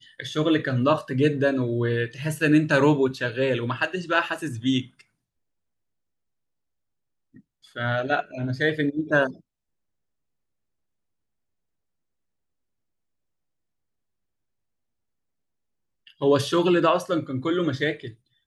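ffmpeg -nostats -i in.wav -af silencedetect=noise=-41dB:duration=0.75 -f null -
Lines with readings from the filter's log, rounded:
silence_start: 5.01
silence_end: 7.36 | silence_duration: 2.35
silence_start: 9.36
silence_end: 16.07 | silence_duration: 6.72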